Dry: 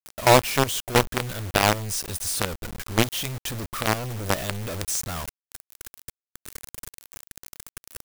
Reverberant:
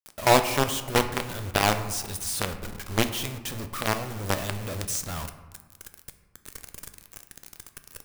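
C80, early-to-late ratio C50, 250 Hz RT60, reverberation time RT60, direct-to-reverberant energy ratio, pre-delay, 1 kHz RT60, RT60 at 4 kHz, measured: 12.5 dB, 11.0 dB, 2.1 s, 1.6 s, 8.0 dB, 5 ms, 1.6 s, 0.65 s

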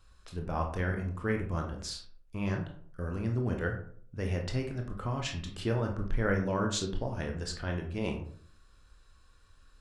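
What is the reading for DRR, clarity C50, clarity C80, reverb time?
2.0 dB, 7.5 dB, 11.5 dB, 0.55 s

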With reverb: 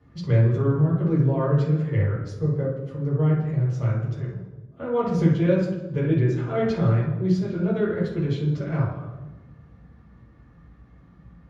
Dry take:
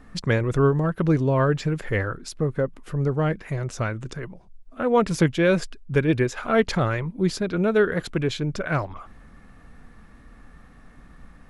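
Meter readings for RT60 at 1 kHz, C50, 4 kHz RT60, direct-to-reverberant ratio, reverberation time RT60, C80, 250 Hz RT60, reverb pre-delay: 1.0 s, 2.0 dB, 0.80 s, -7.0 dB, 1.2 s, 6.0 dB, 1.6 s, 3 ms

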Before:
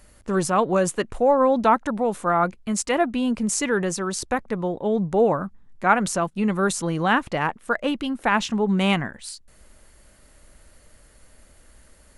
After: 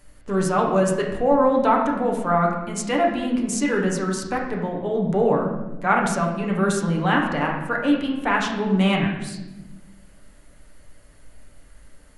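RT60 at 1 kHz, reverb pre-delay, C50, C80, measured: 0.85 s, 7 ms, 4.0 dB, 6.0 dB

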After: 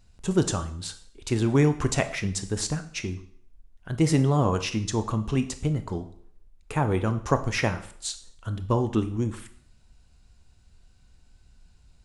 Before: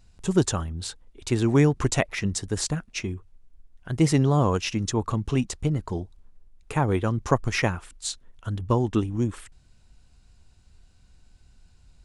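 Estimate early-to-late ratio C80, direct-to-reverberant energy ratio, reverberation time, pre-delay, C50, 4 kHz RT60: 17.0 dB, 9.0 dB, 0.60 s, 18 ms, 13.5 dB, 0.55 s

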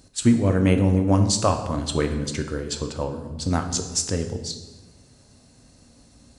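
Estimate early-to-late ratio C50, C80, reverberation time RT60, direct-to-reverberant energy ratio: 9.0 dB, 11.0 dB, 1.2 s, 5.5 dB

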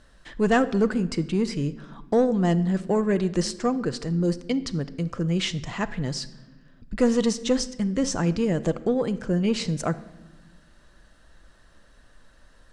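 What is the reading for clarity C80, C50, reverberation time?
18.5 dB, 16.0 dB, 1.2 s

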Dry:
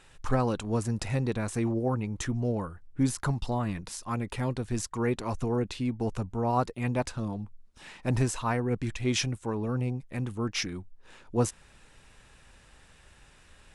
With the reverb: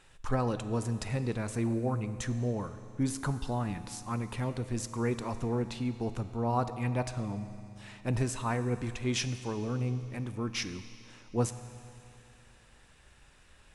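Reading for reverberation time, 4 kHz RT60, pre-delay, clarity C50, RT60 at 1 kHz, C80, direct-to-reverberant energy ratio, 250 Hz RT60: 2.7 s, 2.7 s, 9 ms, 11.5 dB, 2.7 s, 12.0 dB, 10.5 dB, 2.7 s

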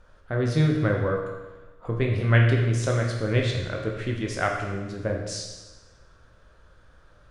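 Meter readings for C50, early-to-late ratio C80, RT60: 4.0 dB, 6.0 dB, 1.2 s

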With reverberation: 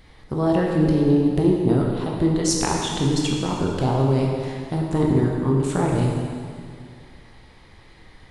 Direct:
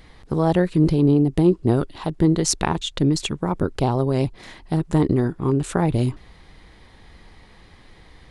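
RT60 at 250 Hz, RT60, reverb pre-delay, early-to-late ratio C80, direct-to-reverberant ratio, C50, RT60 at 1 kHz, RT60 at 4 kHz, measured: 2.2 s, 2.2 s, 7 ms, 2.0 dB, -1.5 dB, 0.5 dB, 2.2 s, 2.1 s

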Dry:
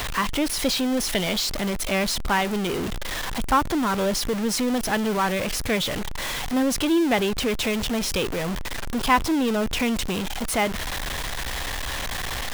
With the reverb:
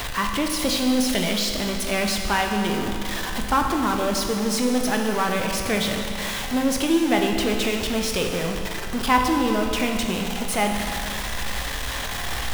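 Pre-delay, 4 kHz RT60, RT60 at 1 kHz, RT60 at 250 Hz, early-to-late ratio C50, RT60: 16 ms, 2.3 s, 2.4 s, 2.4 s, 3.5 dB, 2.4 s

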